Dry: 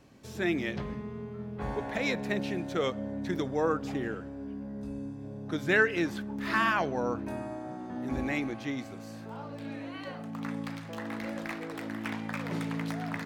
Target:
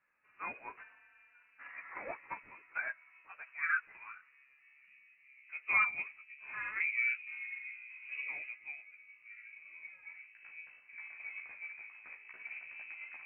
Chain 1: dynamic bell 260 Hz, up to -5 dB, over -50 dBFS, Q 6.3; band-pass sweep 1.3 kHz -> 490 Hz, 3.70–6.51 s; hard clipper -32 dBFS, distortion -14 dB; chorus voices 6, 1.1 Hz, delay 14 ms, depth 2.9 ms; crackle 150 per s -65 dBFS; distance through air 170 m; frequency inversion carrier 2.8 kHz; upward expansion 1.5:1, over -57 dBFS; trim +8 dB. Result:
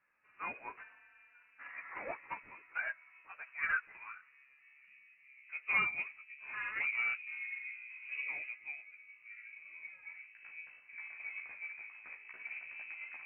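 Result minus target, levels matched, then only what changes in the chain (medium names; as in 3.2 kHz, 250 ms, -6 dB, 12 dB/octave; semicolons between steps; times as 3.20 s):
hard clipper: distortion +20 dB
change: hard clipper -25.5 dBFS, distortion -34 dB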